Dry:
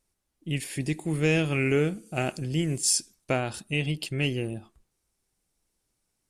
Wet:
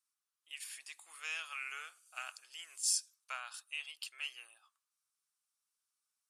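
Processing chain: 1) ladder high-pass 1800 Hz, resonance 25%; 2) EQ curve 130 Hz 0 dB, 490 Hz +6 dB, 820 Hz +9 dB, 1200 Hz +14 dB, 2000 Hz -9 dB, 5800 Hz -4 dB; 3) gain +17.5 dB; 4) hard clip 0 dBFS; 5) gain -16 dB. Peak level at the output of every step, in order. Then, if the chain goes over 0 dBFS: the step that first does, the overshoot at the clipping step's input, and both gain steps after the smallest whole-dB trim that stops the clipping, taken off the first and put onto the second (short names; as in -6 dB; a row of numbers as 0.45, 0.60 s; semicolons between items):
-16.0, -20.0, -2.5, -2.5, -18.5 dBFS; no overload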